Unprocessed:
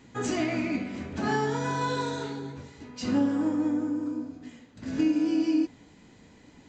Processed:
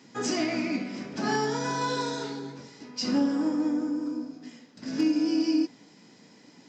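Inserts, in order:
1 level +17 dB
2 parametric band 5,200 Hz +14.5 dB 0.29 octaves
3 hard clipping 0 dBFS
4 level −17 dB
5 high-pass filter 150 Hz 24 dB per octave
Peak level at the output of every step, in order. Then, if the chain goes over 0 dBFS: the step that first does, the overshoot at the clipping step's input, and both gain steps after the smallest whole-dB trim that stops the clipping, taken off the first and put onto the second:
+3.0, +4.0, 0.0, −17.0, −14.5 dBFS
step 1, 4.0 dB
step 1 +13 dB, step 4 −13 dB

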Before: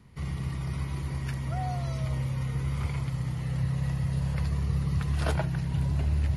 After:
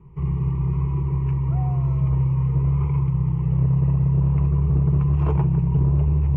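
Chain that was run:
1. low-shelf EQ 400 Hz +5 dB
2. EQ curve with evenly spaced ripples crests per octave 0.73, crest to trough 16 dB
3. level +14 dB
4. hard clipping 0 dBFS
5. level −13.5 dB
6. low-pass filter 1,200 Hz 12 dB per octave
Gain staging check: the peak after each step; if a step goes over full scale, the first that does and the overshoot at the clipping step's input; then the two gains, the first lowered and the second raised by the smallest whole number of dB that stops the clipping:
−12.5, −9.5, +4.5, 0.0, −13.5, −13.5 dBFS
step 3, 4.5 dB
step 3 +9 dB, step 5 −8.5 dB

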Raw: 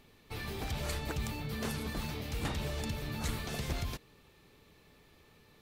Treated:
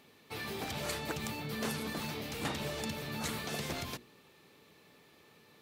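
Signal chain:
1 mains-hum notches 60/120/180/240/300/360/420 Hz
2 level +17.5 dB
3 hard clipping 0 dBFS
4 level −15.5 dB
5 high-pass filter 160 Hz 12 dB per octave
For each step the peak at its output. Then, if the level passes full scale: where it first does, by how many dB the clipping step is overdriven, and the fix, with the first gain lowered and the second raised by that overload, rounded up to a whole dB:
−22.5, −5.0, −5.0, −20.5, −22.0 dBFS
no step passes full scale

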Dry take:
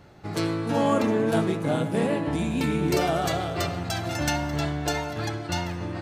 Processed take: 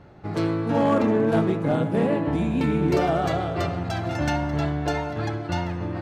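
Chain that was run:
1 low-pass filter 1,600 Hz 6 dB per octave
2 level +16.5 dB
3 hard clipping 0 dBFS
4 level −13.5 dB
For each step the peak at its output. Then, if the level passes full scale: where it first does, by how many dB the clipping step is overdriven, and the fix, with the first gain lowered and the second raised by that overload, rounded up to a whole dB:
−13.0, +3.5, 0.0, −13.5 dBFS
step 2, 3.5 dB
step 2 +12.5 dB, step 4 −9.5 dB

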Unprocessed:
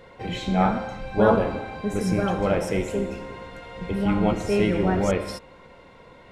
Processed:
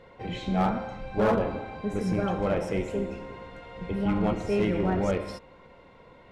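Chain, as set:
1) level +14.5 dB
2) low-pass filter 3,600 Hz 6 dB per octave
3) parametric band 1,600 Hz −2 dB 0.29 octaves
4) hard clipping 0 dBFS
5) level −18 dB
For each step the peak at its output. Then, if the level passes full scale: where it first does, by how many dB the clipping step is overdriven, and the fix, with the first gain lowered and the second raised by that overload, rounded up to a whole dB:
+8.5, +8.0, +8.0, 0.0, −18.0 dBFS
step 1, 8.0 dB
step 1 +6.5 dB, step 5 −10 dB

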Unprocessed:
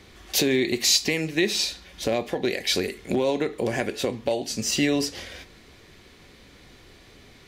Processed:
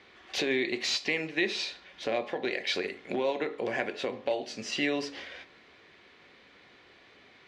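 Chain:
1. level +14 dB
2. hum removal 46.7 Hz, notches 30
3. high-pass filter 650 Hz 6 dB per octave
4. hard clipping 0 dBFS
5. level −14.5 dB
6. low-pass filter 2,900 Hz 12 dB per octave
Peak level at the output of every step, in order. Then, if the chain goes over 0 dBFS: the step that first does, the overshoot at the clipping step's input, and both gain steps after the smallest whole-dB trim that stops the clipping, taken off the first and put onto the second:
+7.0, +7.0, +7.0, 0.0, −14.5, −15.0 dBFS
step 1, 7.0 dB
step 1 +7 dB, step 5 −7.5 dB

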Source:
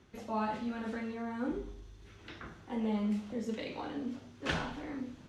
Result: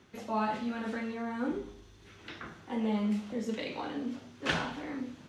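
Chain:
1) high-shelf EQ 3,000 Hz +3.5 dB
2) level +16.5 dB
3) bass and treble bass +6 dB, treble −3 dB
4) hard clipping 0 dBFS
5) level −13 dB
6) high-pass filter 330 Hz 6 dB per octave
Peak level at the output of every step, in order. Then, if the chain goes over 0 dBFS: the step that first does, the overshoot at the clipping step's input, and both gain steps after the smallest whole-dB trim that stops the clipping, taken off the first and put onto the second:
−18.0, −1.5, −2.0, −2.0, −15.0, −15.0 dBFS
no step passes full scale

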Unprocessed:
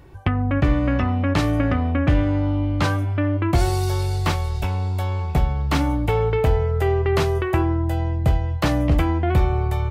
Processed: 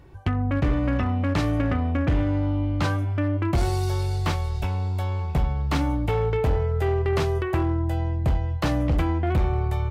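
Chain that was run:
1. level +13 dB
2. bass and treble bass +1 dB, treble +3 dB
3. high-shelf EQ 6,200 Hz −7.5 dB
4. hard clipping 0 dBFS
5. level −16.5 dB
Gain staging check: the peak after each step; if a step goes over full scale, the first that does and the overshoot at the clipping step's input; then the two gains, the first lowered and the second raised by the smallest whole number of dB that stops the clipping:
+5.0, +5.5, +5.5, 0.0, −16.5 dBFS
step 1, 5.5 dB
step 1 +7 dB, step 5 −10.5 dB

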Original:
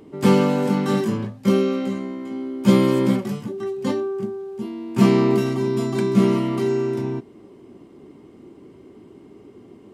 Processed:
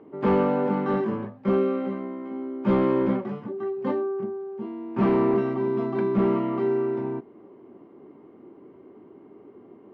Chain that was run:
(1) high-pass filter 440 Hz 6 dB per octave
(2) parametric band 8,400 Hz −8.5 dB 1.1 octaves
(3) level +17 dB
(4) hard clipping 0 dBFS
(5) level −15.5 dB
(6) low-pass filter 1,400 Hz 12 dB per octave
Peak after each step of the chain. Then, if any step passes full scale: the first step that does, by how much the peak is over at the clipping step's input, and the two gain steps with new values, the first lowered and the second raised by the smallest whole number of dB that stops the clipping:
−8.0, −8.5, +8.5, 0.0, −15.5, −15.0 dBFS
step 3, 8.5 dB
step 3 +8 dB, step 5 −6.5 dB

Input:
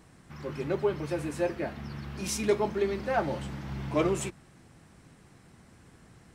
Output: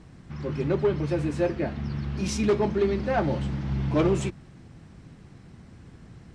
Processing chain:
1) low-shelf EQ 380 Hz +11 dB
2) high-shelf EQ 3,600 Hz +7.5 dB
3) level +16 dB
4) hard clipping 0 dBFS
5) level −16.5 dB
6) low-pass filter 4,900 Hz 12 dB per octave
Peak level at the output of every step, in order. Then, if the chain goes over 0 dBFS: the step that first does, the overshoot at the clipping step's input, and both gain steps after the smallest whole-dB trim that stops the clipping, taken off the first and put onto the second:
−9.0, −9.0, +7.0, 0.0, −16.5, −16.0 dBFS
step 3, 7.0 dB
step 3 +9 dB, step 5 −9.5 dB

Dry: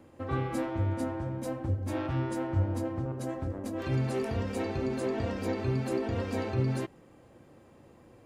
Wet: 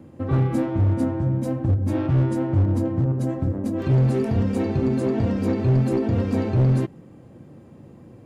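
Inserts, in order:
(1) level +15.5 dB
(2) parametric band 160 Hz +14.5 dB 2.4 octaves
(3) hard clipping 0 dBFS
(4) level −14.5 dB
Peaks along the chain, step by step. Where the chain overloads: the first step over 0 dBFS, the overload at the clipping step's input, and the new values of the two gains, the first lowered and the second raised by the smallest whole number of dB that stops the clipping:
−1.5, +8.5, 0.0, −14.5 dBFS
step 2, 8.5 dB
step 1 +6.5 dB, step 4 −5.5 dB

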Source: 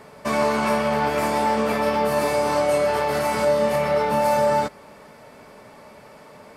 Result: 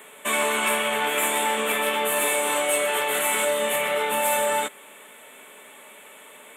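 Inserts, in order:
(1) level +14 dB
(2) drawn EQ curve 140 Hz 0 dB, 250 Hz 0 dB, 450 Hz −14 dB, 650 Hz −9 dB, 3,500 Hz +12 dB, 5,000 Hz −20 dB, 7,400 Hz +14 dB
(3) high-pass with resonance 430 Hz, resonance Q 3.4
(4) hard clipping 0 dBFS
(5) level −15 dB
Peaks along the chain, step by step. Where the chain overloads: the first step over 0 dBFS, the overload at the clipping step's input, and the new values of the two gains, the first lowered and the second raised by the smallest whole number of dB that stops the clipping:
+5.0, +4.0, +5.0, 0.0, −15.0 dBFS
step 1, 5.0 dB
step 1 +9 dB, step 5 −10 dB

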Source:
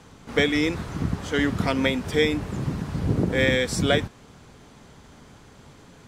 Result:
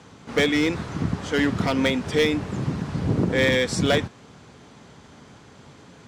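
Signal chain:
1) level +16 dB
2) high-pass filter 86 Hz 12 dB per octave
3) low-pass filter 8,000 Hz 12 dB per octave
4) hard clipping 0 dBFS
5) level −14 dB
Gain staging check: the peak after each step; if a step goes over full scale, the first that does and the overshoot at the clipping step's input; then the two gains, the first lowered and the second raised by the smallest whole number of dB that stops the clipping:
+9.5, +9.0, +9.0, 0.0, −14.0 dBFS
step 1, 9.0 dB
step 1 +7 dB, step 5 −5 dB

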